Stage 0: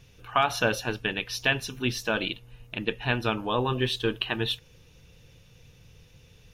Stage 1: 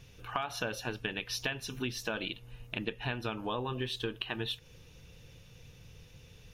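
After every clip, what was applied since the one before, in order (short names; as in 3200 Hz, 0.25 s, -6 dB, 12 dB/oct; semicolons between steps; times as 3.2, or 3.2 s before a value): compressor 6:1, threshold -32 dBFS, peak gain reduction 13.5 dB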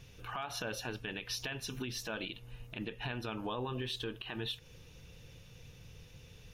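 limiter -28.5 dBFS, peak gain reduction 11.5 dB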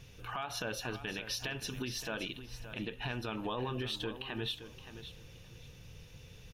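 feedback echo 0.571 s, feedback 20%, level -12 dB; gain +1 dB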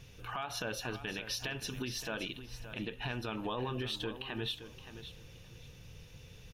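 nothing audible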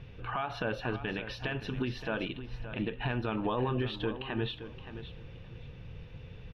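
air absorption 400 m; gain +7 dB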